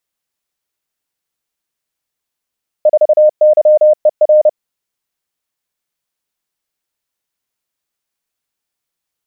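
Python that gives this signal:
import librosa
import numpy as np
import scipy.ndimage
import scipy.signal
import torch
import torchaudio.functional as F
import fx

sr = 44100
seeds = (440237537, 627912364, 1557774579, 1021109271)

y = fx.morse(sr, text='4YER', wpm=30, hz=610.0, level_db=-4.0)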